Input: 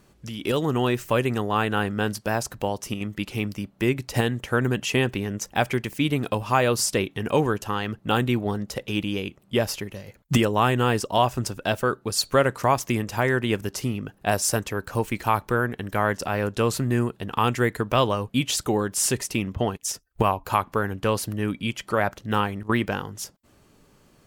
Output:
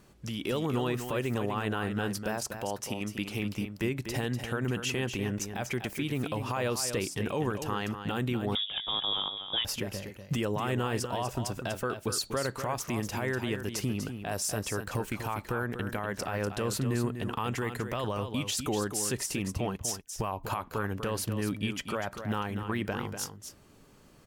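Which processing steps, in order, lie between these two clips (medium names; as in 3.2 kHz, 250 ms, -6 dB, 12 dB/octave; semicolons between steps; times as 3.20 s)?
2.36–3.40 s: bass shelf 120 Hz -9 dB; in parallel at -2.5 dB: compression, threshold -30 dBFS, peak gain reduction 15 dB; on the sum: peak limiter -16 dBFS, peak gain reduction 11.5 dB; delay 245 ms -8.5 dB; 8.55–9.65 s: frequency inversion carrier 3.6 kHz; trim -6 dB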